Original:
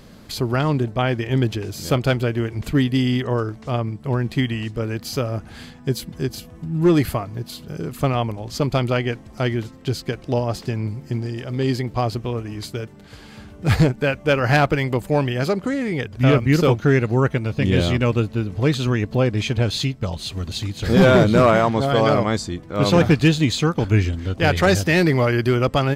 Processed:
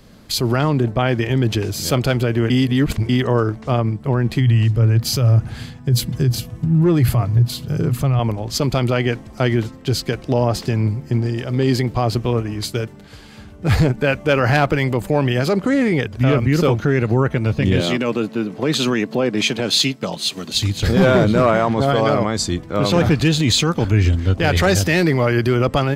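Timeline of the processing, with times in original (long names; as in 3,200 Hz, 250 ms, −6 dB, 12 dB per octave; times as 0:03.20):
0:02.50–0:03.09: reverse
0:04.39–0:08.19: parametric band 120 Hz +13.5 dB 0.53 octaves
0:17.80–0:20.54: high-pass filter 170 Hz 24 dB per octave
whole clip: boost into a limiter +15 dB; multiband upward and downward expander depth 40%; level −7.5 dB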